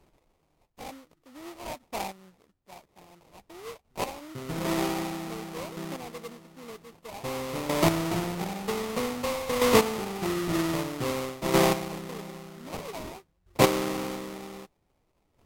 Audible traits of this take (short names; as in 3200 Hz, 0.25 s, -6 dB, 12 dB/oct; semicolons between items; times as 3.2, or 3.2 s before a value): aliases and images of a low sample rate 1600 Hz, jitter 20%; chopped level 0.52 Hz, depth 65%, duty 10%; Vorbis